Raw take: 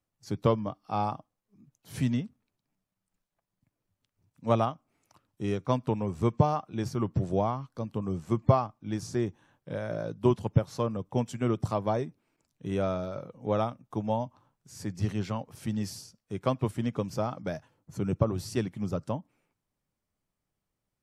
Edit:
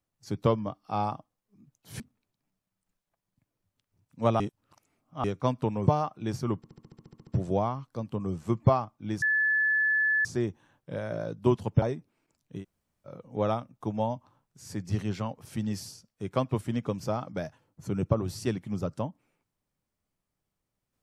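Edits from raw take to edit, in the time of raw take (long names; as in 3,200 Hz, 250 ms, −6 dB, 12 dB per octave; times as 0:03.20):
0:02.00–0:02.25: remove
0:04.65–0:05.49: reverse
0:06.12–0:06.39: remove
0:07.09: stutter 0.07 s, 11 plays
0:09.04: insert tone 1,730 Hz −22 dBFS 1.03 s
0:10.61–0:11.92: remove
0:12.70–0:13.19: fill with room tone, crossfade 0.10 s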